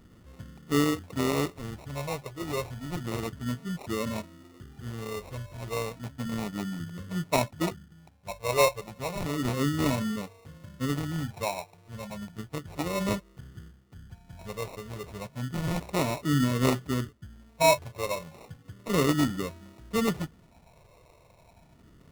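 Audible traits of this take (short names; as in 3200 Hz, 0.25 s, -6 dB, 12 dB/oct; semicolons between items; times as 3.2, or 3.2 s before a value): phasing stages 4, 0.32 Hz, lowest notch 240–1800 Hz; aliases and images of a low sample rate 1600 Hz, jitter 0%; AAC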